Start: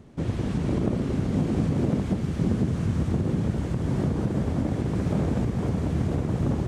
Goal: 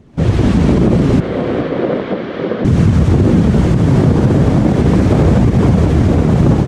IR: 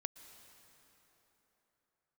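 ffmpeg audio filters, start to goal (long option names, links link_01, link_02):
-filter_complex "[0:a]flanger=delay=0.3:depth=8.3:regen=-57:speed=0.36:shape=triangular,asettb=1/sr,asplit=3[link_01][link_02][link_03];[link_01]atrim=end=1.204[link_04];[link_02]atrim=start=1.2:end=2.65,asetpts=PTS-STARTPTS,afade=type=in:duration=0.004:curve=qsin,afade=type=out:start_time=1.446:duration=0.004:curve=qsin,highpass=460,equalizer=frequency=510:width_type=q:width=4:gain=5,equalizer=frequency=840:width_type=q:width=4:gain=-6,equalizer=frequency=2600:width_type=q:width=4:gain=-5,lowpass=frequency=3500:width=0.5412,lowpass=frequency=3500:width=1.3066[link_05];[link_03]atrim=start=2.646[link_06];[link_04][link_05]acrossfade=duration=0.004:curve1=hsin:curve2=qsin[link_07];[link_07][link_06]acrossfade=duration=0.004:curve1=qsin:curve2=hsin,dynaudnorm=framelen=120:gausssize=3:maxgain=14dB,aecho=1:1:415|830|1245:0.15|0.0569|0.0216,asplit=2[link_08][link_09];[1:a]atrim=start_sample=2205,lowpass=7600[link_10];[link_09][link_10]afir=irnorm=-1:irlink=0,volume=-2.5dB[link_11];[link_08][link_11]amix=inputs=2:normalize=0,alimiter=level_in=4.5dB:limit=-1dB:release=50:level=0:latency=1,volume=-1dB"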